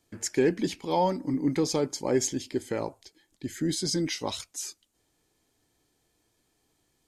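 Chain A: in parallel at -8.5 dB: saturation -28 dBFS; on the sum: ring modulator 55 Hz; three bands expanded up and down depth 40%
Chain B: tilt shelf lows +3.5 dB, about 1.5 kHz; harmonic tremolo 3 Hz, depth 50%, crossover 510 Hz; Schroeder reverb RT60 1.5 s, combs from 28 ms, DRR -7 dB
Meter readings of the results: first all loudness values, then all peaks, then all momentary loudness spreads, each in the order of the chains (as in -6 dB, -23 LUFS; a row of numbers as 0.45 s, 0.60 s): -29.5 LUFS, -21.5 LUFS; -10.5 dBFS, -5.5 dBFS; 12 LU, 14 LU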